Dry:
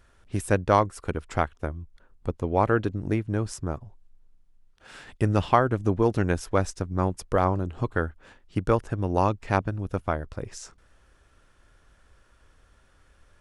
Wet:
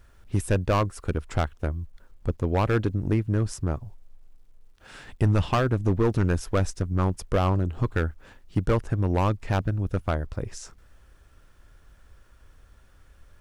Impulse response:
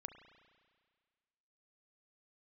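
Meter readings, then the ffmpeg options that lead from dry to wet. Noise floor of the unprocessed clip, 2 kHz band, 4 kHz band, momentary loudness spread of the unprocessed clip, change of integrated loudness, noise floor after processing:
−60 dBFS, −1.5 dB, +3.0 dB, 13 LU, 0.0 dB, −55 dBFS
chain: -af "acrusher=bits=11:mix=0:aa=0.000001,volume=18dB,asoftclip=hard,volume=-18dB,lowshelf=frequency=160:gain=7"

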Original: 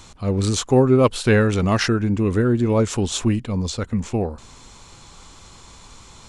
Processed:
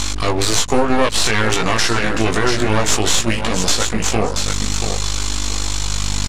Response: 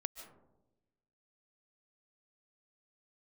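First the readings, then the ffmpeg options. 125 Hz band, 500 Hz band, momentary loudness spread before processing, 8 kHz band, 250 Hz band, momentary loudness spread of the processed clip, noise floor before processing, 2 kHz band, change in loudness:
−2.0 dB, 0.0 dB, 9 LU, +12.5 dB, −1.5 dB, 6 LU, −46 dBFS, +8.5 dB, +2.0 dB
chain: -af "highpass=frequency=1000:poles=1,aeval=exprs='val(0)+0.00794*(sin(2*PI*50*n/s)+sin(2*PI*2*50*n/s)/2+sin(2*PI*3*50*n/s)/3+sin(2*PI*4*50*n/s)/4+sin(2*PI*5*50*n/s)/5)':channel_layout=same,highshelf=frequency=3300:gain=10,aecho=1:1:680|1360|2040:0.251|0.0553|0.0122,aeval=exprs='max(val(0),0)':channel_layout=same,lowpass=7800,acompressor=threshold=-44dB:ratio=2,flanger=delay=17:depth=2.3:speed=0.55,acontrast=78,alimiter=level_in=22.5dB:limit=-1dB:release=50:level=0:latency=1,volume=-1dB"

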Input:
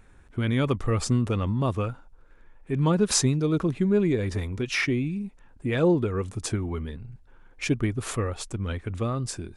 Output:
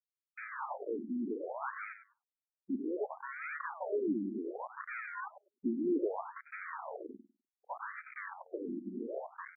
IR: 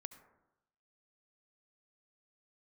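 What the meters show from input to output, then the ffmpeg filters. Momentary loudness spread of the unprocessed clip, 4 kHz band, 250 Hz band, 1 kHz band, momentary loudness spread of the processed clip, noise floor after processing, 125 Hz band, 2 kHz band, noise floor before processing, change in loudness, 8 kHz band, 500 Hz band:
12 LU, below −40 dB, −12.0 dB, −5.5 dB, 12 LU, below −85 dBFS, below −30 dB, −9.0 dB, −54 dBFS, −13.0 dB, below −40 dB, −11.0 dB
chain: -filter_complex "[0:a]lowpass=2900,highshelf=frequency=2300:gain=-8,acrossover=split=1600[link_01][link_02];[link_02]acompressor=threshold=-57dB:ratio=12[link_03];[link_01][link_03]amix=inputs=2:normalize=0,asoftclip=type=tanh:threshold=-29.5dB,aresample=16000,acrusher=bits=5:mix=0:aa=0.000001,aresample=44100,asplit=2[link_04][link_05];[link_05]adelay=100,lowpass=frequency=810:poles=1,volume=-9dB,asplit=2[link_06][link_07];[link_07]adelay=100,lowpass=frequency=810:poles=1,volume=0.17,asplit=2[link_08][link_09];[link_09]adelay=100,lowpass=frequency=810:poles=1,volume=0.17[link_10];[link_04][link_06][link_08][link_10]amix=inputs=4:normalize=0,acrusher=samples=28:mix=1:aa=0.000001:lfo=1:lforange=16.8:lforate=1.6,afftfilt=real='re*between(b*sr/1024,250*pow(1800/250,0.5+0.5*sin(2*PI*0.65*pts/sr))/1.41,250*pow(1800/250,0.5+0.5*sin(2*PI*0.65*pts/sr))*1.41)':imag='im*between(b*sr/1024,250*pow(1800/250,0.5+0.5*sin(2*PI*0.65*pts/sr))/1.41,250*pow(1800/250,0.5+0.5*sin(2*PI*0.65*pts/sr))*1.41)':win_size=1024:overlap=0.75,volume=3dB"

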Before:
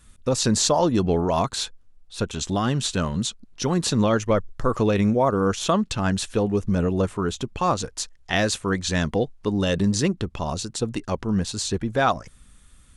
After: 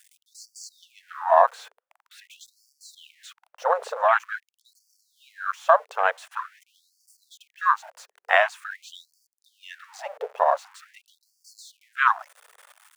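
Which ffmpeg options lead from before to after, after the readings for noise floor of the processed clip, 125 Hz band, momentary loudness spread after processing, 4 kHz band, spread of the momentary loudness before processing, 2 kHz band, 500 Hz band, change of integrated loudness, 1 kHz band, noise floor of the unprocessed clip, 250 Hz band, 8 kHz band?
below −85 dBFS, below −40 dB, 19 LU, −13.0 dB, 8 LU, +4.0 dB, −4.0 dB, 0.0 dB, +3.5 dB, −53 dBFS, below −40 dB, −18.5 dB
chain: -filter_complex "[0:a]aeval=exprs='val(0)+0.5*0.0562*sgn(val(0))':channel_layout=same,aeval=exprs='0.501*(cos(1*acos(clip(val(0)/0.501,-1,1)))-cos(1*PI/2))+0.0891*(cos(3*acos(clip(val(0)/0.501,-1,1)))-cos(3*PI/2))+0.00794*(cos(6*acos(clip(val(0)/0.501,-1,1)))-cos(6*PI/2))+0.0141*(cos(8*acos(clip(val(0)/0.501,-1,1)))-cos(8*PI/2))':channel_layout=same,acrossover=split=160|450|2400[link_01][link_02][link_03][link_04];[link_03]dynaudnorm=framelen=110:gausssize=7:maxgain=14.5dB[link_05];[link_01][link_02][link_05][link_04]amix=inputs=4:normalize=0,afwtdn=0.1,equalizer=frequency=3900:width_type=o:width=0.42:gain=-2,afftfilt=real='re*gte(b*sr/1024,410*pow(4500/410,0.5+0.5*sin(2*PI*0.46*pts/sr)))':imag='im*gte(b*sr/1024,410*pow(4500/410,0.5+0.5*sin(2*PI*0.46*pts/sr)))':win_size=1024:overlap=0.75"

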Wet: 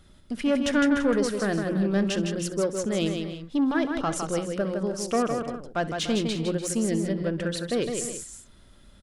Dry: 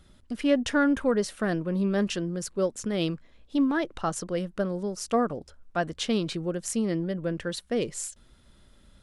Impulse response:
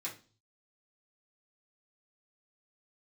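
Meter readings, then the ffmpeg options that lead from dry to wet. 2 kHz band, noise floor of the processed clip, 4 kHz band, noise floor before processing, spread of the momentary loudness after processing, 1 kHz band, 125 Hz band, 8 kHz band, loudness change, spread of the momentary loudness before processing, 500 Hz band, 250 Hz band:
+1.5 dB, −54 dBFS, +2.5 dB, −58 dBFS, 7 LU, +1.0 dB, +2.0 dB, +3.0 dB, +2.0 dB, 8 LU, +1.5 dB, +2.0 dB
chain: -filter_complex "[0:a]bandreject=frequency=60:width_type=h:width=6,bandreject=frequency=120:width_type=h:width=6,bandreject=frequency=180:width_type=h:width=6,asoftclip=type=tanh:threshold=-19dB,asplit=2[link_01][link_02];[link_02]aecho=0:1:64|159|294|336:0.126|0.531|0.211|0.188[link_03];[link_01][link_03]amix=inputs=2:normalize=0,volume=2dB"

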